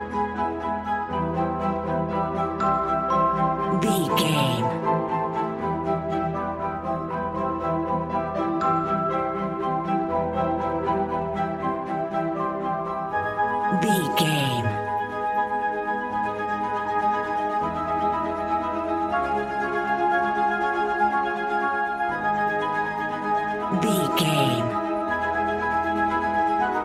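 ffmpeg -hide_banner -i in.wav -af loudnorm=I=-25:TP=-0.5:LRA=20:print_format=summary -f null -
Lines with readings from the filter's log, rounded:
Input Integrated:    -24.4 LUFS
Input True Peak:      -7.7 dBTP
Input LRA:             2.5 LU
Input Threshold:     -34.4 LUFS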